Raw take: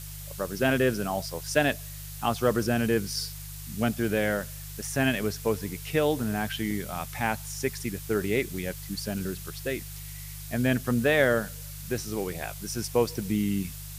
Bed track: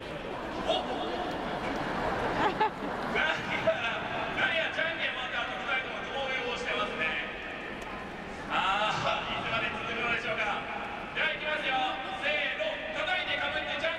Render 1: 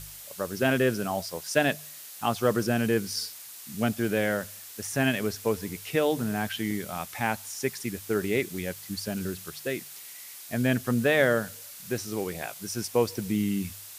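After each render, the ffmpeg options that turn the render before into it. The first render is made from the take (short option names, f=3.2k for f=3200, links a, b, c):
-af "bandreject=f=50:t=h:w=4,bandreject=f=100:t=h:w=4,bandreject=f=150:t=h:w=4"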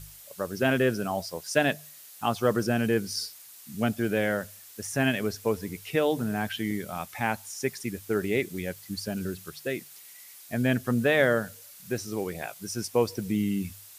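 -af "afftdn=nr=6:nf=-44"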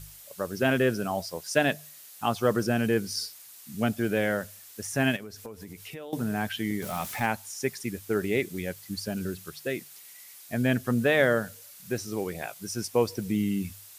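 -filter_complex "[0:a]asettb=1/sr,asplit=3[a][b][c];[a]atrim=end=5.164[d];[b]atrim=start=5.16:end=6.13,asetpts=PTS-STARTPTS,afade=t=in:d=0.004:c=qsin,afade=t=out:st=0.966:d=0.004:c=qsin,acompressor=threshold=-38dB:ratio=6:attack=3.2:release=140:knee=1:detection=peak[e];[c]atrim=start=6.126[f];[d][e]acrossfade=d=0.004:c1=hsin:c2=qsin[g];[g][f]acrossfade=d=0.004:c1=qsin:c2=hsin,asettb=1/sr,asplit=3[h][i][j];[h]atrim=end=6.824[k];[i]atrim=start=6.82:end=7.26,asetpts=PTS-STARTPTS,afade=t=in:d=0.004:c=qsin,afade=t=out:st=0.436:d=0.004:c=qsin,aeval=exprs='val(0)+0.5*0.0178*sgn(val(0))':c=same[l];[j]atrim=start=7.256[m];[k][l]acrossfade=d=0.004:c1=hsin:c2=qsin[n];[n][m]acrossfade=d=0.004:c1=qsin:c2=hsin"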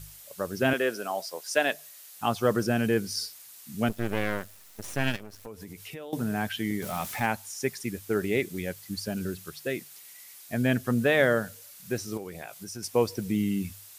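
-filter_complex "[0:a]asettb=1/sr,asplit=3[a][b][c];[a]atrim=end=0.734[d];[b]atrim=start=0.73:end=2.14,asetpts=PTS-STARTPTS,afade=t=in:d=0.004:c=qsin,afade=t=out:st=1.406:d=0.004:c=qsin,highpass=400[e];[c]atrim=start=2.136[f];[d][e]acrossfade=d=0.004:c1=hsin:c2=qsin[g];[g][f]acrossfade=d=0.004:c1=qsin:c2=hsin,asettb=1/sr,asplit=3[h][i][j];[h]atrim=end=3.894[k];[i]atrim=start=3.89:end=5.47,asetpts=PTS-STARTPTS,afade=t=in:d=0.004:c=qsin,afade=t=out:st=1.576:d=0.004:c=qsin,aeval=exprs='max(val(0),0)':c=same[l];[j]atrim=start=5.466[m];[k][l]acrossfade=d=0.004:c1=hsin:c2=qsin[n];[n][m]acrossfade=d=0.004:c1=qsin:c2=hsin,asettb=1/sr,asplit=3[o][p][q];[o]atrim=end=12.174[r];[p]atrim=start=12.17:end=12.83,asetpts=PTS-STARTPTS,afade=t=in:d=0.004:c=qsin,afade=t=out:st=0.656:d=0.004:c=qsin,acompressor=threshold=-37dB:ratio=2.5:attack=3.2:release=140:knee=1:detection=peak[s];[q]atrim=start=12.826[t];[r][s]acrossfade=d=0.004:c1=hsin:c2=qsin[u];[u][t]acrossfade=d=0.004:c1=qsin:c2=hsin"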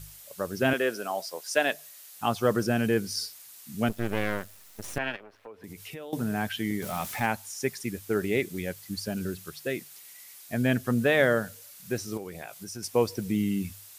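-filter_complex "[0:a]asettb=1/sr,asplit=3[a][b][c];[a]atrim=end=4.984[d];[b]atrim=start=4.98:end=5.64,asetpts=PTS-STARTPTS,afade=t=in:d=0.004:c=qsin,afade=t=out:st=0.656:d=0.004:c=qsin,acrossover=split=340 3200:gain=0.158 1 0.0708[e][f][g];[e][f][g]amix=inputs=3:normalize=0[h];[c]atrim=start=5.636[i];[d][h]acrossfade=d=0.004:c1=hsin:c2=qsin[j];[j][i]acrossfade=d=0.004:c1=qsin:c2=hsin"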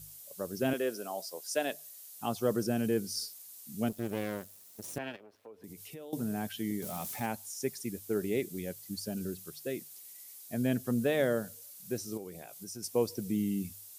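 -af "highpass=f=220:p=1,equalizer=f=1.7k:w=0.46:g=-12.5"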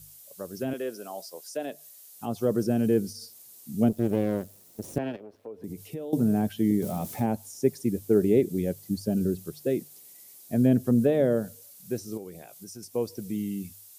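-filter_complex "[0:a]acrossover=split=670[a][b];[a]dynaudnorm=f=280:g=21:m=11.5dB[c];[b]alimiter=level_in=8.5dB:limit=-24dB:level=0:latency=1:release=130,volume=-8.5dB[d];[c][d]amix=inputs=2:normalize=0"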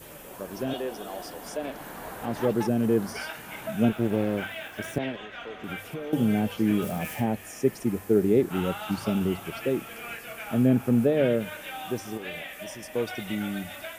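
-filter_complex "[1:a]volume=-8.5dB[a];[0:a][a]amix=inputs=2:normalize=0"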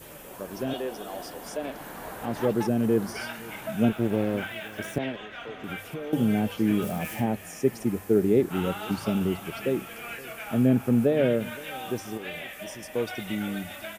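-filter_complex "[0:a]asplit=2[a][b];[b]adelay=519,volume=-21dB,highshelf=f=4k:g=-11.7[c];[a][c]amix=inputs=2:normalize=0"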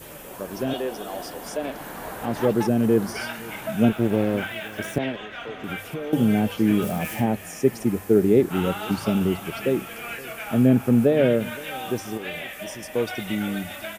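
-af "volume=4dB"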